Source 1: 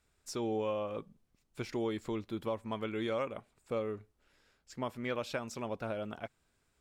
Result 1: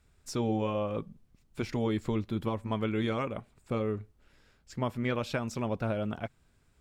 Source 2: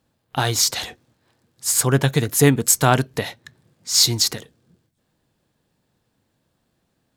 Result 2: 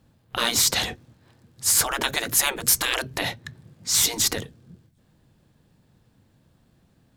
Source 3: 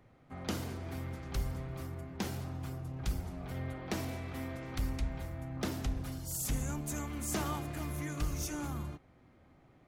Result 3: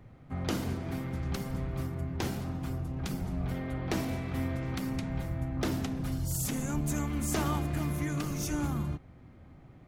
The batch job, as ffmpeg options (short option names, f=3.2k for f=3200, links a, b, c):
-af "bass=f=250:g=8,treble=f=4k:g=-2,afftfilt=real='re*lt(hypot(re,im),0.224)':imag='im*lt(hypot(re,im),0.224)':win_size=1024:overlap=0.75,volume=4dB"